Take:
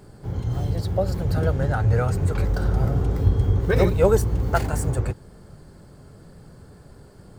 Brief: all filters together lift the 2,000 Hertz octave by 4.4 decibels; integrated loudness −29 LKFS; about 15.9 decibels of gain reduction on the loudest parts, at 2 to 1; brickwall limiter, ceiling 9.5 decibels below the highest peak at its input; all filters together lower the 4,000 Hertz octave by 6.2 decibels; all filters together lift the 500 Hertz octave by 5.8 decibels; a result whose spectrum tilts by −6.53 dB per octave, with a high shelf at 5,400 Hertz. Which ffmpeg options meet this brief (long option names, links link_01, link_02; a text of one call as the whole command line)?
ffmpeg -i in.wav -af "equalizer=frequency=500:width_type=o:gain=6.5,equalizer=frequency=2000:width_type=o:gain=8,equalizer=frequency=4000:width_type=o:gain=-8,highshelf=frequency=5400:gain=-6,acompressor=threshold=-38dB:ratio=2,volume=7dB,alimiter=limit=-18.5dB:level=0:latency=1" out.wav